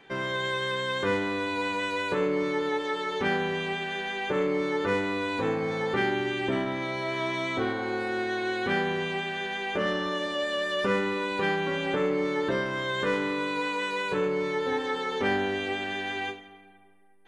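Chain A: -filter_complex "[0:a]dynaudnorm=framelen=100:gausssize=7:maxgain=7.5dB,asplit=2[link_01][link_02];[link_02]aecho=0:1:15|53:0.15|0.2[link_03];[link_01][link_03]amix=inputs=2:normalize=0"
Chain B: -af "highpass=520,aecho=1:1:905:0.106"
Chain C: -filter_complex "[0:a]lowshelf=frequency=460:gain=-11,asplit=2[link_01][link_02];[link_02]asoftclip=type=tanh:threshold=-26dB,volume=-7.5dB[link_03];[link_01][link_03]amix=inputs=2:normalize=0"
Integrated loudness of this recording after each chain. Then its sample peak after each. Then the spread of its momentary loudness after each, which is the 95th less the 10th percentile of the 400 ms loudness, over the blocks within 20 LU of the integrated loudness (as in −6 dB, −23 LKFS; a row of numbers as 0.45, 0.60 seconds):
−21.0, −30.5, −28.5 LKFS; −6.5, −16.0, −17.0 dBFS; 4, 3, 3 LU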